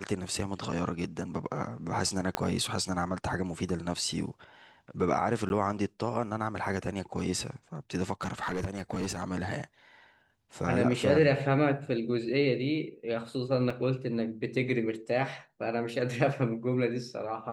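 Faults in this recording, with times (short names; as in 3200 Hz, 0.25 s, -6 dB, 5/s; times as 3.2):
2.35 pop -12 dBFS
5.49–5.5 gap
8.12–9.24 clipped -27.5 dBFS
13.7 gap 3.5 ms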